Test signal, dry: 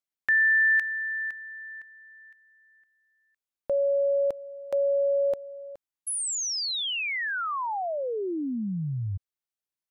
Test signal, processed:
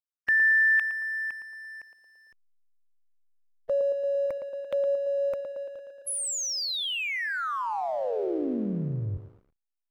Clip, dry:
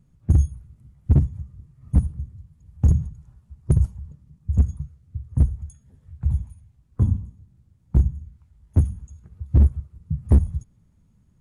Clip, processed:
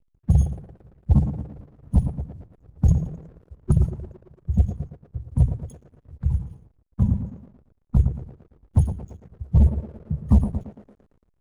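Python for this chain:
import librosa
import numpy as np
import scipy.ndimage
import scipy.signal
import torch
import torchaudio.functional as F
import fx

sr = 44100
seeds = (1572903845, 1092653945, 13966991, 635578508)

y = fx.spec_quant(x, sr, step_db=30)
y = fx.echo_banded(y, sr, ms=113, feedback_pct=74, hz=460.0, wet_db=-4)
y = fx.backlash(y, sr, play_db=-46.0)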